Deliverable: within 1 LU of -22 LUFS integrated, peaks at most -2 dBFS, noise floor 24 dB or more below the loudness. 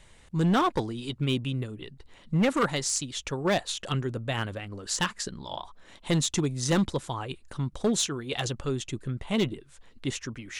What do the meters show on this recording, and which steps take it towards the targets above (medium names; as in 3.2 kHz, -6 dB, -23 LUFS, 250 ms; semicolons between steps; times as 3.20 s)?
clipped samples 1.2%; clipping level -19.0 dBFS; loudness -29.0 LUFS; peak level -19.0 dBFS; loudness target -22.0 LUFS
-> clip repair -19 dBFS; trim +7 dB